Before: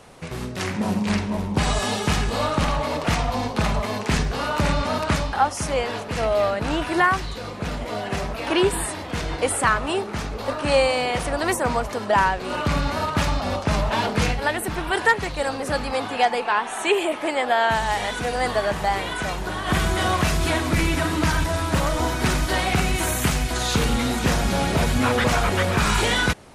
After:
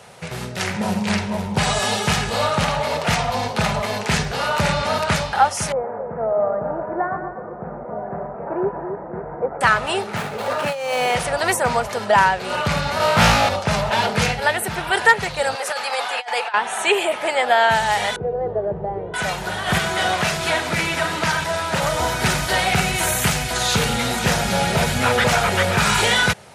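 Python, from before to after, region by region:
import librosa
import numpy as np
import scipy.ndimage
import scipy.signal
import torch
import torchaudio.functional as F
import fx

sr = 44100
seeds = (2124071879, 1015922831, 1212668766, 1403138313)

y = fx.chain(x, sr, fx.gaussian_blur(sigma=8.2),
    fx.peak_eq(hz=83.0, db=-13.0, octaves=1.6),
    fx.echo_split(split_hz=640.0, low_ms=266, high_ms=119, feedback_pct=52, wet_db=-7.0), at=(5.72, 9.61))
y = fx.chain(y, sr, fx.median_filter(points=9),
    fx.highpass(hz=140.0, slope=12),
    fx.over_compress(threshold_db=-25.0, ratio=-1.0), at=(10.16, 11.15))
y = fx.chain(y, sr, fx.room_flutter(wall_m=3.1, rt60_s=0.98),
    fx.doppler_dist(depth_ms=0.39), at=(12.98, 13.49))
y = fx.chain(y, sr, fx.highpass(hz=680.0, slope=12),
    fx.over_compress(threshold_db=-27.0, ratio=-0.5), at=(15.55, 16.54))
y = fx.chain(y, sr, fx.lowpass_res(hz=400.0, q=2.3),
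    fx.peak_eq(hz=250.0, db=-14.5, octaves=0.39), at=(18.16, 19.14))
y = fx.chain(y, sr, fx.highpass(hz=210.0, slope=6),
    fx.high_shelf(hz=10000.0, db=-9.5), at=(19.78, 21.82))
y = scipy.signal.sosfilt(scipy.signal.butter(2, 110.0, 'highpass', fs=sr, output='sos'), y)
y = fx.peak_eq(y, sr, hz=290.0, db=-15.0, octaves=0.55)
y = fx.notch(y, sr, hz=1100.0, q=9.5)
y = y * librosa.db_to_amplitude(5.0)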